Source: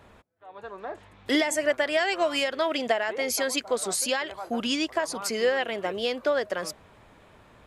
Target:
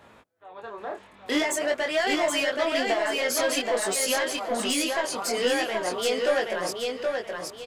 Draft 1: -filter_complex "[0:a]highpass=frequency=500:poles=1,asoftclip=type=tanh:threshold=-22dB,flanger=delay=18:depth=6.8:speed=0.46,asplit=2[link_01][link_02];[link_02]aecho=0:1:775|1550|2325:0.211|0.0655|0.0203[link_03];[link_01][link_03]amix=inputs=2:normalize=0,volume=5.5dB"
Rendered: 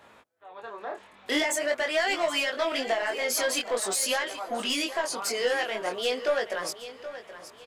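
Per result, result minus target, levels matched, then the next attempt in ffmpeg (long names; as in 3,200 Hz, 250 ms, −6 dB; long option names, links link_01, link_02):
echo-to-direct −10 dB; 250 Hz band −3.5 dB
-filter_complex "[0:a]highpass=frequency=500:poles=1,asoftclip=type=tanh:threshold=-22dB,flanger=delay=18:depth=6.8:speed=0.46,asplit=2[link_01][link_02];[link_02]aecho=0:1:775|1550|2325|3100:0.668|0.207|0.0642|0.0199[link_03];[link_01][link_03]amix=inputs=2:normalize=0,volume=5.5dB"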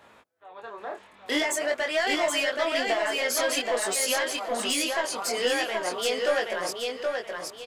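250 Hz band −3.0 dB
-filter_complex "[0:a]highpass=frequency=190:poles=1,asoftclip=type=tanh:threshold=-22dB,flanger=delay=18:depth=6.8:speed=0.46,asplit=2[link_01][link_02];[link_02]aecho=0:1:775|1550|2325|3100:0.668|0.207|0.0642|0.0199[link_03];[link_01][link_03]amix=inputs=2:normalize=0,volume=5.5dB"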